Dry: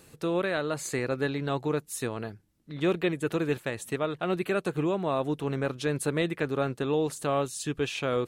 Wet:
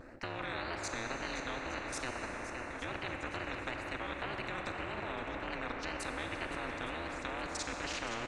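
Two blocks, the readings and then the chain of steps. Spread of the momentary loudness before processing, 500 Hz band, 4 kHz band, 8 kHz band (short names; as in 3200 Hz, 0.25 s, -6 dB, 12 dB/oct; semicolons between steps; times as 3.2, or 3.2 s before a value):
4 LU, -14.0 dB, -4.0 dB, -7.0 dB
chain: HPF 130 Hz; low shelf 170 Hz -11.5 dB; notches 60/120/180/240/300/360/420/480/540/600 Hz; comb 3.1 ms, depth 46%; level quantiser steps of 18 dB; fixed phaser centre 640 Hz, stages 8; AM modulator 240 Hz, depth 90%; wow and flutter 140 cents; tape spacing loss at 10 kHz 41 dB; on a send: swung echo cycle 0.864 s, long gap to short 1.5:1, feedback 35%, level -13.5 dB; on the sum: Schroeder reverb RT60 3.5 s, combs from 30 ms, DRR 7 dB; spectral compressor 4:1; gain +8 dB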